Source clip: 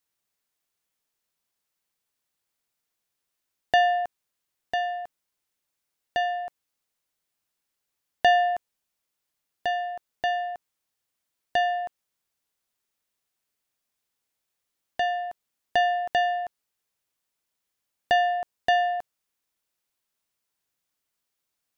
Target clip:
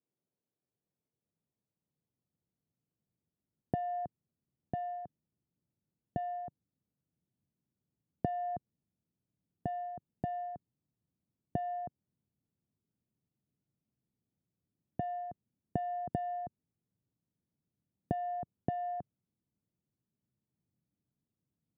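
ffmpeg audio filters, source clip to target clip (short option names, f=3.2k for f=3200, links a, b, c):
-af "asubboost=boost=8:cutoff=160,acompressor=threshold=-26dB:ratio=6,asuperpass=centerf=240:order=4:qfactor=0.66,volume=4.5dB"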